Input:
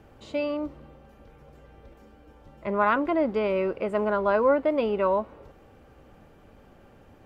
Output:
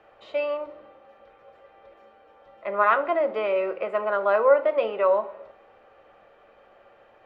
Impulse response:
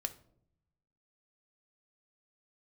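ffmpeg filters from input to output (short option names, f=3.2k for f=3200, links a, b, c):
-filter_complex "[0:a]acrossover=split=420 3800:gain=0.0631 1 0.0794[a][b][c];[a][b][c]amix=inputs=3:normalize=0[d];[1:a]atrim=start_sample=2205[e];[d][e]afir=irnorm=-1:irlink=0,volume=4dB"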